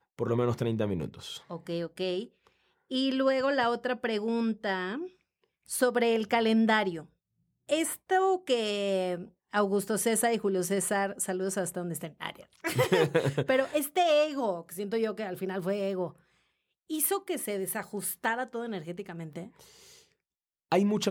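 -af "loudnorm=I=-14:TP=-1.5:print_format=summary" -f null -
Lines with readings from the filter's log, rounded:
Input Integrated:    -29.7 LUFS
Input True Peak:     -11.8 dBTP
Input LRA:             4.9 LU
Input Threshold:     -40.4 LUFS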